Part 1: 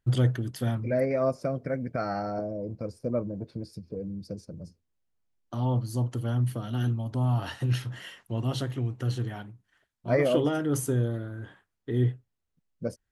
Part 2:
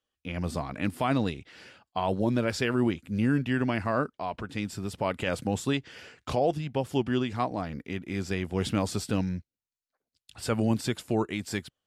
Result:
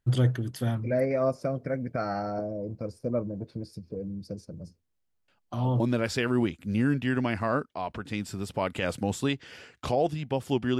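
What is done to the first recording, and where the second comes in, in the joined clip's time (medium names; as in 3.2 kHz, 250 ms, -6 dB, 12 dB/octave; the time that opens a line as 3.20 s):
part 1
5.28 s: add part 2 from 1.72 s 0.52 s -14 dB
5.80 s: go over to part 2 from 2.24 s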